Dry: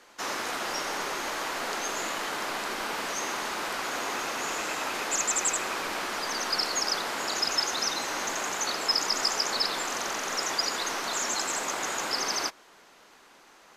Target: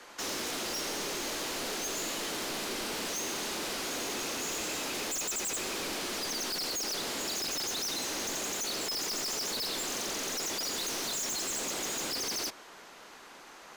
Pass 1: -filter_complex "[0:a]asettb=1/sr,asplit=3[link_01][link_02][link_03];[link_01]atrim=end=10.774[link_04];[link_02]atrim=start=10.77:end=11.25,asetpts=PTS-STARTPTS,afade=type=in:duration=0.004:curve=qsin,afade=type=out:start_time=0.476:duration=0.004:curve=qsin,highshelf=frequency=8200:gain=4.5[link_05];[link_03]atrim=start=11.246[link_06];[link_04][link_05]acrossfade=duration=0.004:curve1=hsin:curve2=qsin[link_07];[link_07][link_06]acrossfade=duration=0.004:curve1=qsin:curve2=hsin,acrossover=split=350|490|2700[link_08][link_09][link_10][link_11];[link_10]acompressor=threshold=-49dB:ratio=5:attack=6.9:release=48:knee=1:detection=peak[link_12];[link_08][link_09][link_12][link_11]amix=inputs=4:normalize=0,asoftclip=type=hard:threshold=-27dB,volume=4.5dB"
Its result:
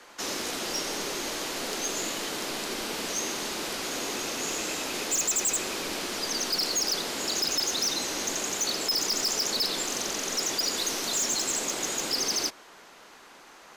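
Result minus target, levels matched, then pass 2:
hard clipping: distortion −7 dB
-filter_complex "[0:a]asettb=1/sr,asplit=3[link_01][link_02][link_03];[link_01]atrim=end=10.774[link_04];[link_02]atrim=start=10.77:end=11.25,asetpts=PTS-STARTPTS,afade=type=in:duration=0.004:curve=qsin,afade=type=out:start_time=0.476:duration=0.004:curve=qsin,highshelf=frequency=8200:gain=4.5[link_05];[link_03]atrim=start=11.246[link_06];[link_04][link_05]acrossfade=duration=0.004:curve1=hsin:curve2=qsin[link_07];[link_07][link_06]acrossfade=duration=0.004:curve1=qsin:curve2=hsin,acrossover=split=350|490|2700[link_08][link_09][link_10][link_11];[link_10]acompressor=threshold=-49dB:ratio=5:attack=6.9:release=48:knee=1:detection=peak[link_12];[link_08][link_09][link_12][link_11]amix=inputs=4:normalize=0,asoftclip=type=hard:threshold=-37dB,volume=4.5dB"

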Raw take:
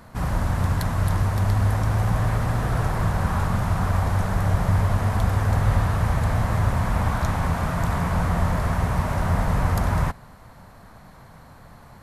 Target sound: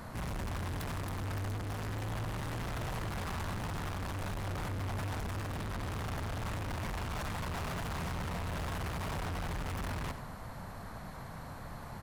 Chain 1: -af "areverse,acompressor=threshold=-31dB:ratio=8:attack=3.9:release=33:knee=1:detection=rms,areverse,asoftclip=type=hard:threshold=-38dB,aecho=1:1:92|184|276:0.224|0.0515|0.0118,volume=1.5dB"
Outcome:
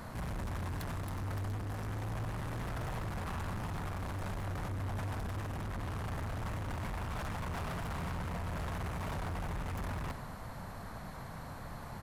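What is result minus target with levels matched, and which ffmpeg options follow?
downward compressor: peak gain reduction +9 dB
-af "areverse,acompressor=threshold=-21dB:ratio=8:attack=3.9:release=33:knee=1:detection=rms,areverse,asoftclip=type=hard:threshold=-38dB,aecho=1:1:92|184|276:0.224|0.0515|0.0118,volume=1.5dB"

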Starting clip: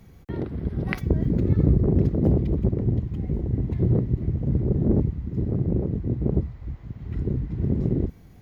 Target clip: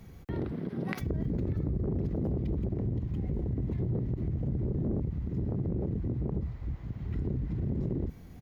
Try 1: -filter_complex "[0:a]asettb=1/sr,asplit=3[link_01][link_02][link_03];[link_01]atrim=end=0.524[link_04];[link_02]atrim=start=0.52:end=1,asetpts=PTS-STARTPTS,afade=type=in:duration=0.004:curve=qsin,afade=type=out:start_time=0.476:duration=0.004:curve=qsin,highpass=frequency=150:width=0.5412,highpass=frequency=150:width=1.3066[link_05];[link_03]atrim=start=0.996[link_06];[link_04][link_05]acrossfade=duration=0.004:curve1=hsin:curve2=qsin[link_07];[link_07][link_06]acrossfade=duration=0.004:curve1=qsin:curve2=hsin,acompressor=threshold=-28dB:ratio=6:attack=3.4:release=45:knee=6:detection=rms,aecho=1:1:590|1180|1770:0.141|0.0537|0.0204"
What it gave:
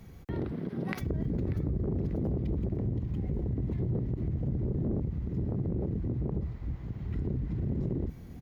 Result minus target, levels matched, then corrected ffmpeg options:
echo-to-direct +9 dB
-filter_complex "[0:a]asettb=1/sr,asplit=3[link_01][link_02][link_03];[link_01]atrim=end=0.524[link_04];[link_02]atrim=start=0.52:end=1,asetpts=PTS-STARTPTS,afade=type=in:duration=0.004:curve=qsin,afade=type=out:start_time=0.476:duration=0.004:curve=qsin,highpass=frequency=150:width=0.5412,highpass=frequency=150:width=1.3066[link_05];[link_03]atrim=start=0.996[link_06];[link_04][link_05]acrossfade=duration=0.004:curve1=hsin:curve2=qsin[link_07];[link_07][link_06]acrossfade=duration=0.004:curve1=qsin:curve2=hsin,acompressor=threshold=-28dB:ratio=6:attack=3.4:release=45:knee=6:detection=rms,aecho=1:1:590|1180:0.0501|0.019"

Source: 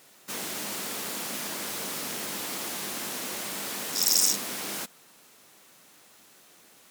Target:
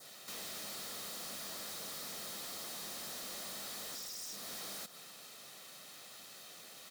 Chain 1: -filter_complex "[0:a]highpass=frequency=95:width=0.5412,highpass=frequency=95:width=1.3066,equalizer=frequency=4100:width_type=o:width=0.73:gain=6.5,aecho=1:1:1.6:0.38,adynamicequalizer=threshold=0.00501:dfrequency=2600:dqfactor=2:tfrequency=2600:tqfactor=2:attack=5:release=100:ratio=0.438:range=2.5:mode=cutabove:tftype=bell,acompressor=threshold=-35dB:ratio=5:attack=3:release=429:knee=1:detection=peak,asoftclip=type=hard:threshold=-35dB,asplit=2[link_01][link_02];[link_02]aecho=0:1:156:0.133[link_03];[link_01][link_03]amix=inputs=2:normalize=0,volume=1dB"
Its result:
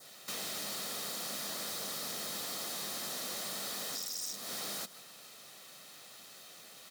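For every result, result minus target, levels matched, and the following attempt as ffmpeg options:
echo 90 ms early; hard clipping: distortion −10 dB
-filter_complex "[0:a]highpass=frequency=95:width=0.5412,highpass=frequency=95:width=1.3066,equalizer=frequency=4100:width_type=o:width=0.73:gain=6.5,aecho=1:1:1.6:0.38,adynamicequalizer=threshold=0.00501:dfrequency=2600:dqfactor=2:tfrequency=2600:tqfactor=2:attack=5:release=100:ratio=0.438:range=2.5:mode=cutabove:tftype=bell,acompressor=threshold=-35dB:ratio=5:attack=3:release=429:knee=1:detection=peak,asoftclip=type=hard:threshold=-35dB,asplit=2[link_01][link_02];[link_02]aecho=0:1:246:0.133[link_03];[link_01][link_03]amix=inputs=2:normalize=0,volume=1dB"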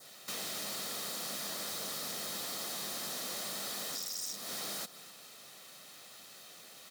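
hard clipping: distortion −10 dB
-filter_complex "[0:a]highpass=frequency=95:width=0.5412,highpass=frequency=95:width=1.3066,equalizer=frequency=4100:width_type=o:width=0.73:gain=6.5,aecho=1:1:1.6:0.38,adynamicequalizer=threshold=0.00501:dfrequency=2600:dqfactor=2:tfrequency=2600:tqfactor=2:attack=5:release=100:ratio=0.438:range=2.5:mode=cutabove:tftype=bell,acompressor=threshold=-35dB:ratio=5:attack=3:release=429:knee=1:detection=peak,asoftclip=type=hard:threshold=-44dB,asplit=2[link_01][link_02];[link_02]aecho=0:1:246:0.133[link_03];[link_01][link_03]amix=inputs=2:normalize=0,volume=1dB"

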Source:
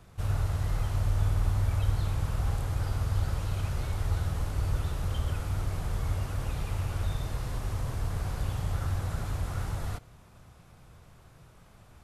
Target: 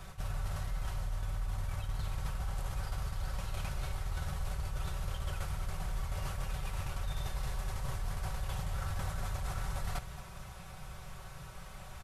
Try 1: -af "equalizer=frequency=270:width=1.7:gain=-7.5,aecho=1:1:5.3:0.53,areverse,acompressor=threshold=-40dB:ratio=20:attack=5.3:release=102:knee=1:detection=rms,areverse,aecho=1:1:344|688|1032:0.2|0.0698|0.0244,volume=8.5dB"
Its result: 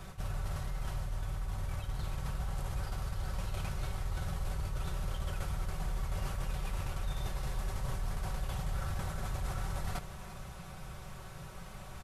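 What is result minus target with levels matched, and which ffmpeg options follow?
echo 120 ms late; 250 Hz band +2.5 dB
-af "equalizer=frequency=270:width=1.7:gain=-17.5,aecho=1:1:5.3:0.53,areverse,acompressor=threshold=-40dB:ratio=20:attack=5.3:release=102:knee=1:detection=rms,areverse,aecho=1:1:224|448|672:0.2|0.0698|0.0244,volume=8.5dB"

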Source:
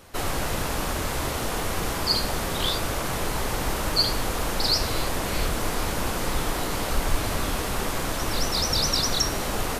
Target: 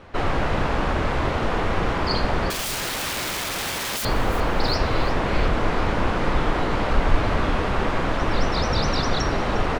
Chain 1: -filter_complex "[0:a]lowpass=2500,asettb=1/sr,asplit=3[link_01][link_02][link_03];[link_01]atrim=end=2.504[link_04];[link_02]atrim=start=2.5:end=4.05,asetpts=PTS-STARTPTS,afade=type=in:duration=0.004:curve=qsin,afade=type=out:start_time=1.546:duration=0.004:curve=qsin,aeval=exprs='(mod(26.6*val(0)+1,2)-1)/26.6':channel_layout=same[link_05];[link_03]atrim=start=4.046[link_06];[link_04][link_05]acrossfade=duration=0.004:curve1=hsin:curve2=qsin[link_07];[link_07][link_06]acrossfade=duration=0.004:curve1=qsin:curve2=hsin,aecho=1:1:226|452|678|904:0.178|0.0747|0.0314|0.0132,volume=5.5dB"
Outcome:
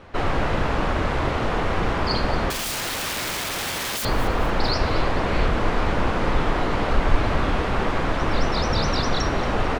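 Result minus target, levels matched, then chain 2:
echo 128 ms early
-filter_complex "[0:a]lowpass=2500,asettb=1/sr,asplit=3[link_01][link_02][link_03];[link_01]atrim=end=2.504[link_04];[link_02]atrim=start=2.5:end=4.05,asetpts=PTS-STARTPTS,afade=type=in:duration=0.004:curve=qsin,afade=type=out:start_time=1.546:duration=0.004:curve=qsin,aeval=exprs='(mod(26.6*val(0)+1,2)-1)/26.6':channel_layout=same[link_05];[link_03]atrim=start=4.046[link_06];[link_04][link_05]acrossfade=duration=0.004:curve1=hsin:curve2=qsin[link_07];[link_07][link_06]acrossfade=duration=0.004:curve1=qsin:curve2=hsin,aecho=1:1:354|708|1062|1416:0.178|0.0747|0.0314|0.0132,volume=5.5dB"

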